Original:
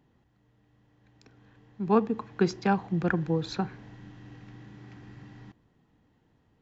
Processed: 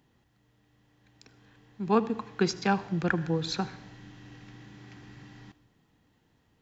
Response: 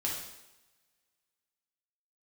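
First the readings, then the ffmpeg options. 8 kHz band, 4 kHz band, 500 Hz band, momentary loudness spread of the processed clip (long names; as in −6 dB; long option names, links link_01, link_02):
can't be measured, +6.0 dB, −1.5 dB, 18 LU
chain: -filter_complex "[0:a]highshelf=frequency=2000:gain=9.5,asplit=2[link_01][link_02];[1:a]atrim=start_sample=2205,adelay=76[link_03];[link_02][link_03]afir=irnorm=-1:irlink=0,volume=-21dB[link_04];[link_01][link_04]amix=inputs=2:normalize=0,volume=-2dB"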